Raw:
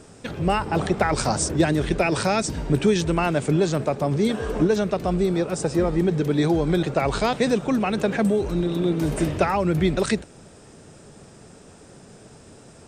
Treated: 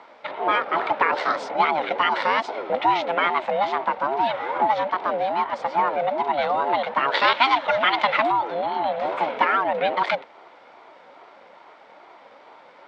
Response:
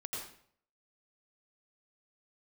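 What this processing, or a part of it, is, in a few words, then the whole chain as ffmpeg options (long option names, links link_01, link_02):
voice changer toy: -filter_complex "[0:a]aeval=exprs='val(0)*sin(2*PI*450*n/s+450*0.25/2.4*sin(2*PI*2.4*n/s))':channel_layout=same,highpass=420,equalizer=frequency=560:width_type=q:width=4:gain=5,equalizer=frequency=920:width_type=q:width=4:gain=6,equalizer=frequency=1400:width_type=q:width=4:gain=9,equalizer=frequency=2200:width_type=q:width=4:gain=9,equalizer=frequency=3600:width_type=q:width=4:gain=5,lowpass=frequency=3900:width=0.5412,lowpass=frequency=3900:width=1.3066,asettb=1/sr,asplit=3[link_01][link_02][link_03];[link_01]atrim=end=7.144[link_04];[link_02]atrim=start=7.14:end=8.32,asetpts=PTS-STARTPTS,afade=type=in:duration=0.004:curve=qsin,afade=type=out:start_time=1.176:duration=0.004:curve=qsin,equalizer=frequency=4100:width_type=o:width=2.4:gain=10[link_05];[link_03]atrim=start=8.316[link_06];[link_04][link_05]acrossfade=duration=0.004:curve1=hsin:curve2=qsin[link_07];[link_07][link_06]acrossfade=duration=0.004:curve1=qsin:curve2=hsin"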